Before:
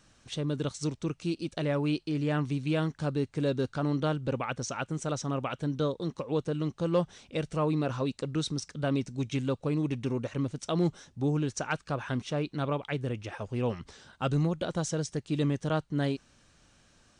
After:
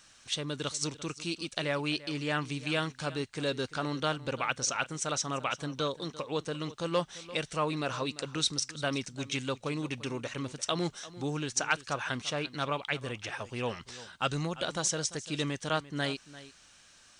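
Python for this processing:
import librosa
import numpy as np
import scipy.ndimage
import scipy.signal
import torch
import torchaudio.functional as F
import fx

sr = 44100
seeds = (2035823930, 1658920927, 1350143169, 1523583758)

y = fx.tilt_shelf(x, sr, db=-8.0, hz=770.0)
y = y + 10.0 ** (-17.0 / 20.0) * np.pad(y, (int(344 * sr / 1000.0), 0))[:len(y)]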